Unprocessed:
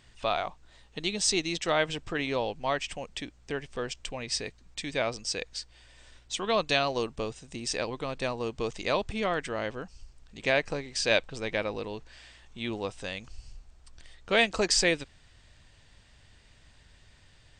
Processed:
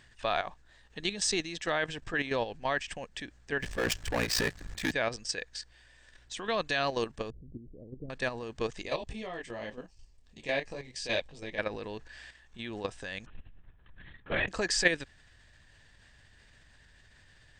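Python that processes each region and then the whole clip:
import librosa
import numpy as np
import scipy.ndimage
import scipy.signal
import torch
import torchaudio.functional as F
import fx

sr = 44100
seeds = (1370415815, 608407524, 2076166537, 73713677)

y = fx.chain(x, sr, fx.transient(attack_db=-10, sustain_db=1),
    fx.leveller(passes=5),
    fx.ring_mod(carrier_hz=29.0), at=(3.62, 4.92))
y = fx.chain(y, sr, fx.gaussian_blur(sigma=24.0),
    fx.pre_swell(db_per_s=37.0), at=(7.3, 8.1))
y = fx.chain(y, sr, fx.peak_eq(hz=1500.0, db=-13.5, octaves=0.48),
    fx.detune_double(cents=14), at=(8.82, 11.59))
y = fx.chain(y, sr, fx.air_absorb(metres=170.0),
    fx.lpc_vocoder(seeds[0], excitation='whisper', order=10), at=(13.26, 14.48))
y = fx.peak_eq(y, sr, hz=1700.0, db=12.0, octaves=0.22)
y = fx.level_steps(y, sr, step_db=10)
y = F.gain(torch.from_numpy(y), 1.0).numpy()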